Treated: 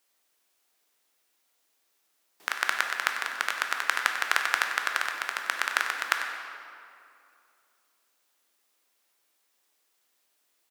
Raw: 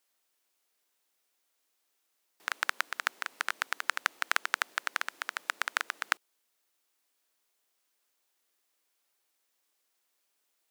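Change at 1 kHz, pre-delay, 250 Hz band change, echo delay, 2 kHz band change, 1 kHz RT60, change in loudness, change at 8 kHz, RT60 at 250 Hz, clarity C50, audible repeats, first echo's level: +5.5 dB, 12 ms, +5.5 dB, 95 ms, +5.5 dB, 2.4 s, +5.0 dB, +4.5 dB, 2.6 s, 3.5 dB, 1, -12.0 dB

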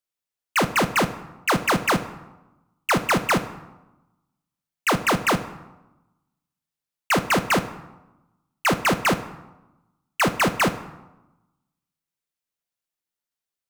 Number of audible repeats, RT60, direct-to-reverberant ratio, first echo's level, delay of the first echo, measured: none, 1.1 s, 10.0 dB, none, none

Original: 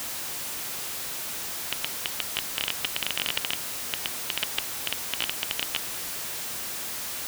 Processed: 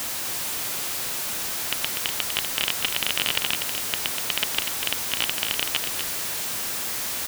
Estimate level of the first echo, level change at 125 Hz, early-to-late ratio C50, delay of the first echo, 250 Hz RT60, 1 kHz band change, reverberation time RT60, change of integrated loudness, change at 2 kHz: -7.0 dB, +5.0 dB, none, 0.245 s, none, +5.0 dB, none, +5.0 dB, +5.0 dB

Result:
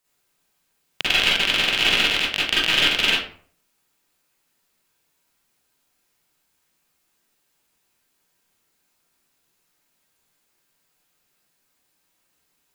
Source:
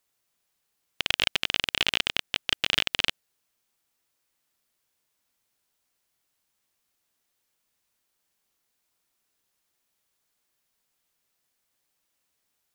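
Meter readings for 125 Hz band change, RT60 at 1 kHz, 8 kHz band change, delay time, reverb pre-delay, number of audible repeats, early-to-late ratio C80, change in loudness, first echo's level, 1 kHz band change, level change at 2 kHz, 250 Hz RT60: +6.5 dB, 0.50 s, +6.5 dB, none, 39 ms, none, 4.5 dB, +7.5 dB, none, +8.5 dB, +9.0 dB, 0.50 s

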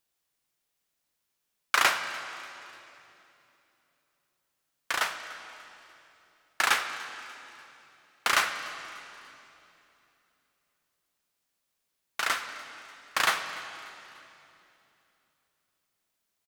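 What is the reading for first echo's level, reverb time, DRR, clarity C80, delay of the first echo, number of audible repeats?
-21.0 dB, 3.0 s, 8.0 dB, 9.0 dB, 0.294 s, 3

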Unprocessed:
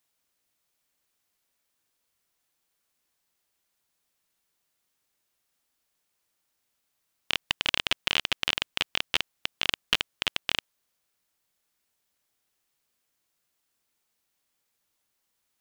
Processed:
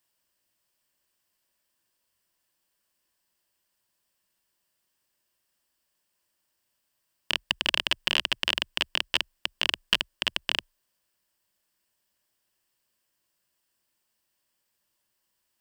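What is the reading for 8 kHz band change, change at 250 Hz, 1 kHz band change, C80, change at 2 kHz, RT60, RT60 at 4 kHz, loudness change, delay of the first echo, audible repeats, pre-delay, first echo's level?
-0.5 dB, +1.0 dB, 0.0 dB, none, +0.5 dB, none, none, +1.0 dB, none, none, none, none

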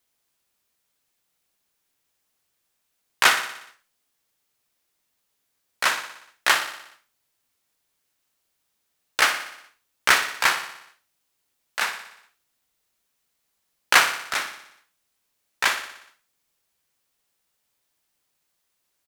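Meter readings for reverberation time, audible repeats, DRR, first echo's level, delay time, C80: none, 6, none, -11.0 dB, 60 ms, none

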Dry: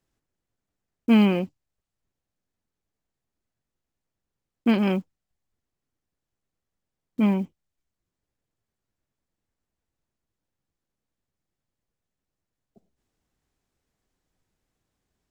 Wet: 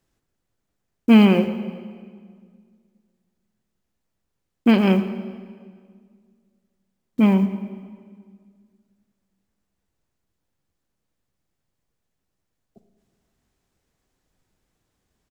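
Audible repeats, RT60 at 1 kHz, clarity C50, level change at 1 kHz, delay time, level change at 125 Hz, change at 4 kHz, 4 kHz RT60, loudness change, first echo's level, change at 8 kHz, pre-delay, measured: 1, 1.8 s, 10.5 dB, +5.5 dB, 0.114 s, +6.0 dB, +5.5 dB, 1.6 s, +4.5 dB, -17.0 dB, n/a, 30 ms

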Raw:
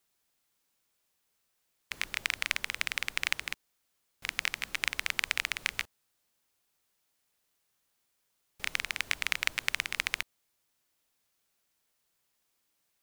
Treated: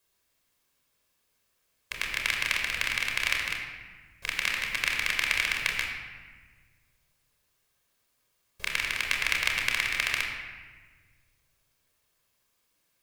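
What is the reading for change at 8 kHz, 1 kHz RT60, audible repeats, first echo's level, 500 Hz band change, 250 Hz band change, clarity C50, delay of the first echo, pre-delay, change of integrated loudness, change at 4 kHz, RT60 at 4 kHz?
+3.0 dB, 1.4 s, none, none, +6.0 dB, +5.0 dB, 3.0 dB, none, 27 ms, +4.5 dB, +4.0 dB, 1.0 s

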